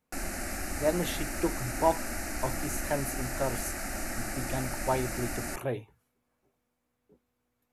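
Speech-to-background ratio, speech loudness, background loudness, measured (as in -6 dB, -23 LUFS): 1.5 dB, -34.0 LUFS, -35.5 LUFS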